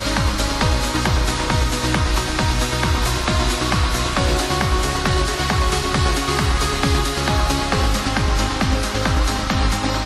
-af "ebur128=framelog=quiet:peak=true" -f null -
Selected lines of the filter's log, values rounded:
Integrated loudness:
  I:         -19.2 LUFS
  Threshold: -29.2 LUFS
Loudness range:
  LRA:         0.4 LU
  Threshold: -39.1 LUFS
  LRA low:   -19.3 LUFS
  LRA high:  -18.9 LUFS
True peak:
  Peak:       -5.3 dBFS